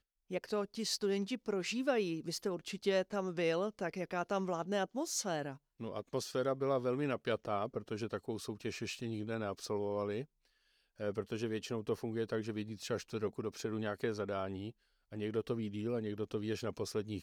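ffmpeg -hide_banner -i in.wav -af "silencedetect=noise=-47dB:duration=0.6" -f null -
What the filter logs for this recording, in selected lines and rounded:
silence_start: 10.24
silence_end: 11.00 | silence_duration: 0.76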